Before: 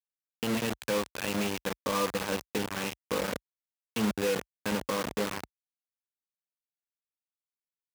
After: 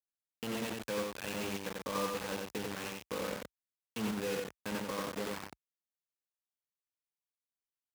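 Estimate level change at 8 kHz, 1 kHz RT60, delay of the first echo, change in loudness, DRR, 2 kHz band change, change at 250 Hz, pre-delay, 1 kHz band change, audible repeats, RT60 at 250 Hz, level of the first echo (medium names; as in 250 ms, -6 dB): -6.0 dB, no reverb, 91 ms, -6.5 dB, no reverb, -6.5 dB, -6.5 dB, no reverb, -6.0 dB, 1, no reverb, -3.0 dB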